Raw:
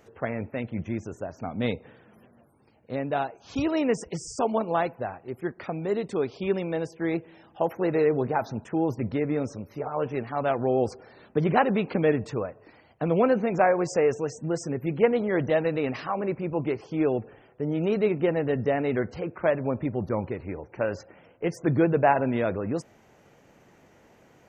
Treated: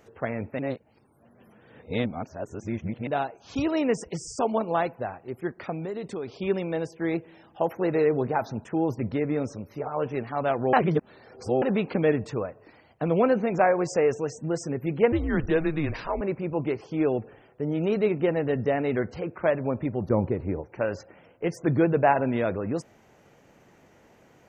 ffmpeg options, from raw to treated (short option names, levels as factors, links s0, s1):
-filter_complex "[0:a]asettb=1/sr,asplit=3[s0][s1][s2];[s0]atrim=end=5.744[s3];[s1]atrim=start=5.74:end=6.28,asetpts=PTS-STARTPTS,afade=t=in:d=0.004:c=qsin,afade=t=out:st=0.536:d=0.004:c=qsin,acompressor=threshold=0.0355:ratio=6:attack=3.2:release=140:knee=1:detection=peak[s4];[s2]atrim=start=6.276[s5];[s3][s4]acrossfade=d=0.004:c1=hsin:c2=qsin[s6];[s6][s5]acrossfade=d=0.004:c1=qsin:c2=hsin,asettb=1/sr,asplit=3[s7][s8][s9];[s7]atrim=end=15.124[s10];[s8]atrim=start=15.12:end=16.21,asetpts=PTS-STARTPTS,afade=t=in:d=0.004:c=qsin,afade=t=out:st=1.086:d=0.004:c=qsin,afreqshift=-150[s11];[s9]atrim=start=16.206[s12];[s10][s11]acrossfade=d=0.004:c1=hsin:c2=qsin[s13];[s13][s12]acrossfade=d=0.004:c1=qsin:c2=hsin,asettb=1/sr,asplit=3[s14][s15][s16];[s14]atrim=end=20.104[s17];[s15]atrim=start=20.1:end=20.62,asetpts=PTS-STARTPTS,afade=t=in:d=0.004:c=qsin,afade=t=out:st=0.516:d=0.004:c=qsin,tiltshelf=f=1100:g=6.5[s18];[s16]atrim=start=20.616[s19];[s17][s18]acrossfade=d=0.004:c1=hsin:c2=qsin[s20];[s20][s19]acrossfade=d=0.004:c1=qsin:c2=hsin,asplit=5[s21][s22][s23][s24][s25];[s21]atrim=end=0.592[s26];[s22]atrim=start=0.588:end=3.072,asetpts=PTS-STARTPTS,areverse[s27];[s23]atrim=start=3.068:end=10.732[s28];[s24]atrim=start=10.728:end=11.622,asetpts=PTS-STARTPTS,areverse[s29];[s25]atrim=start=11.618[s30];[s26][s27]acrossfade=d=0.004:c1=hsin:c2=hsin[s31];[s31][s28]acrossfade=d=0.004:c1=hsin:c2=hsin[s32];[s32][s29]acrossfade=d=0.004:c1=hsin:c2=hsin[s33];[s33][s30]acrossfade=d=0.004:c1=hsin:c2=hsin"